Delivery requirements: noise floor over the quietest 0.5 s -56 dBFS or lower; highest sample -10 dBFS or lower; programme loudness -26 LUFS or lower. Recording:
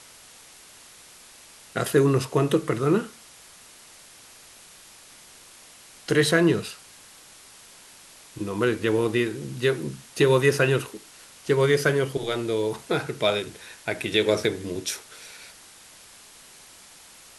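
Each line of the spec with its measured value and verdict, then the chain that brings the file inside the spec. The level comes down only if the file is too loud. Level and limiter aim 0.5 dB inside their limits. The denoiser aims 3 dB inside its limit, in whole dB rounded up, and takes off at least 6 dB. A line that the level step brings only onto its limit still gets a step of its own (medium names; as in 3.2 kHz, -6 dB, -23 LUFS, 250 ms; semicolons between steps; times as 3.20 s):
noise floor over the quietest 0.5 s -49 dBFS: fail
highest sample -6.5 dBFS: fail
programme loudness -24.0 LUFS: fail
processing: noise reduction 8 dB, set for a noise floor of -49 dBFS; trim -2.5 dB; peak limiter -10.5 dBFS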